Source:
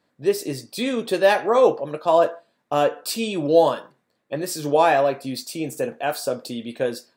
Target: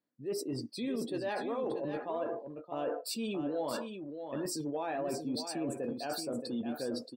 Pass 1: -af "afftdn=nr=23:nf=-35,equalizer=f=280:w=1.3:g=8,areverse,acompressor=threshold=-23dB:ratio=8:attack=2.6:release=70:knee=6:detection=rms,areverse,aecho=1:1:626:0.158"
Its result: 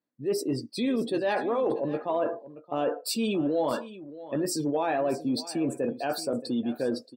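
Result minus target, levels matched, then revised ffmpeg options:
compressor: peak gain reduction -9 dB; echo-to-direct -8.5 dB
-af "afftdn=nr=23:nf=-35,equalizer=f=280:w=1.3:g=8,areverse,acompressor=threshold=-33dB:ratio=8:attack=2.6:release=70:knee=6:detection=rms,areverse,aecho=1:1:626:0.422"

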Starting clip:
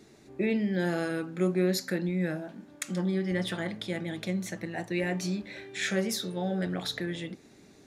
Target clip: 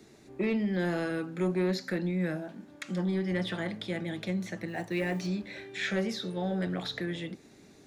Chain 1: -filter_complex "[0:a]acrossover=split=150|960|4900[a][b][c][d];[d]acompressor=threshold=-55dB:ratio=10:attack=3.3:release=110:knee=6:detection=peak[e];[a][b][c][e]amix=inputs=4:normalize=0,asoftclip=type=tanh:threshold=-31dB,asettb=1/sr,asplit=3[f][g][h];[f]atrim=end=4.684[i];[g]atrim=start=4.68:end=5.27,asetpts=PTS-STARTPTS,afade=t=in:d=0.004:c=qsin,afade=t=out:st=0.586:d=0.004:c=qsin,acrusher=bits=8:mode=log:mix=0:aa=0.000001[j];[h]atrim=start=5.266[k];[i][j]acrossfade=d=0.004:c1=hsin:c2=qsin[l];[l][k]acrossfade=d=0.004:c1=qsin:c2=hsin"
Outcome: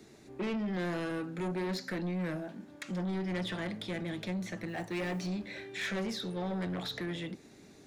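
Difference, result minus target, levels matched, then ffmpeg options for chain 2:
soft clip: distortion +11 dB
-filter_complex "[0:a]acrossover=split=150|960|4900[a][b][c][d];[d]acompressor=threshold=-55dB:ratio=10:attack=3.3:release=110:knee=6:detection=peak[e];[a][b][c][e]amix=inputs=4:normalize=0,asoftclip=type=tanh:threshold=-20.5dB,asettb=1/sr,asplit=3[f][g][h];[f]atrim=end=4.684[i];[g]atrim=start=4.68:end=5.27,asetpts=PTS-STARTPTS,afade=t=in:d=0.004:c=qsin,afade=t=out:st=0.586:d=0.004:c=qsin,acrusher=bits=8:mode=log:mix=0:aa=0.000001[j];[h]atrim=start=5.266[k];[i][j]acrossfade=d=0.004:c1=hsin:c2=qsin[l];[l][k]acrossfade=d=0.004:c1=qsin:c2=hsin"

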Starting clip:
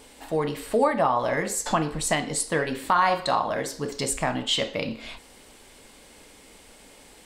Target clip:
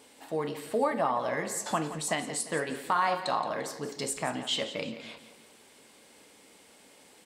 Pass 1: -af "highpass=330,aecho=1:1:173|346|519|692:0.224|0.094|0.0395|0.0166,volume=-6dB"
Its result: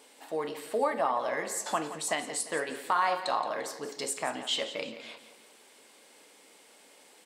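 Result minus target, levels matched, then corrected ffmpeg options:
125 Hz band -10.5 dB
-af "highpass=140,aecho=1:1:173|346|519|692:0.224|0.094|0.0395|0.0166,volume=-6dB"

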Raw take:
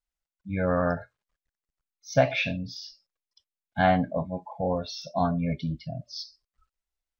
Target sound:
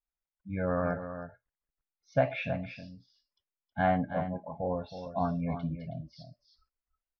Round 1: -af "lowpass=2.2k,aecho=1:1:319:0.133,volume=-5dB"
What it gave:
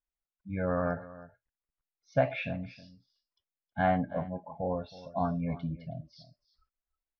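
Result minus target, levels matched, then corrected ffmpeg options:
echo-to-direct -7.5 dB
-af "lowpass=2.2k,aecho=1:1:319:0.316,volume=-5dB"

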